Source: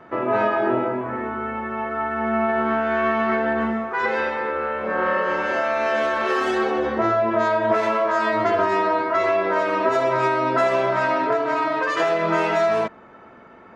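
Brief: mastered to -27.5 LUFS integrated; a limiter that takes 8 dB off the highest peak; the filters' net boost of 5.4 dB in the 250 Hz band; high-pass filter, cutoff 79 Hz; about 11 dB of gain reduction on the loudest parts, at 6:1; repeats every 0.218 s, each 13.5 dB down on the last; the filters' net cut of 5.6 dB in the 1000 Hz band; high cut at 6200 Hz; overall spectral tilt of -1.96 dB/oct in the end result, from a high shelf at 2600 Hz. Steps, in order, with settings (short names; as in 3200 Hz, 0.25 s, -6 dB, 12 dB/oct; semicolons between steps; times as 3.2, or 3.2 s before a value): HPF 79 Hz; LPF 6200 Hz; bell 250 Hz +7.5 dB; bell 1000 Hz -7 dB; high shelf 2600 Hz -5.5 dB; compressor 6:1, threshold -27 dBFS; limiter -25.5 dBFS; feedback echo 0.218 s, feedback 21%, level -13.5 dB; gain +6 dB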